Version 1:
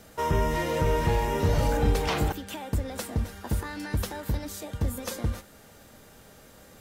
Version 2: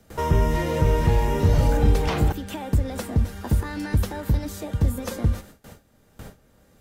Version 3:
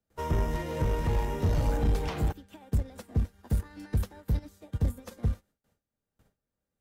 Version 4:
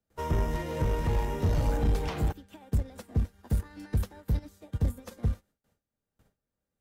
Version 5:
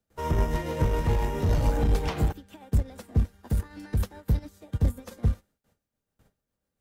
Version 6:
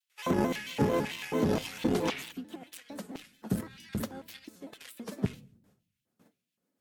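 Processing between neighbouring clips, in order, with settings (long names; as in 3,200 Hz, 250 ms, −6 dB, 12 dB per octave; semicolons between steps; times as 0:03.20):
low-shelf EQ 310 Hz +7.5 dB; noise gate with hold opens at −37 dBFS; multiband upward and downward compressor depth 40%
in parallel at +0.5 dB: brickwall limiter −15.5 dBFS, peak gain reduction 8.5 dB; on the sum: soft clipping −11.5 dBFS, distortion −15 dB; expander for the loud parts 2.5 to 1, over −34 dBFS; level −6 dB
no processing that can be heard
amplitude tremolo 7.2 Hz, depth 36%; level +4.5 dB
auto-filter high-pass square 1.9 Hz 230–2,600 Hz; rectangular room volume 690 cubic metres, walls furnished, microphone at 0.32 metres; pitch modulation by a square or saw wave square 4.5 Hz, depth 160 cents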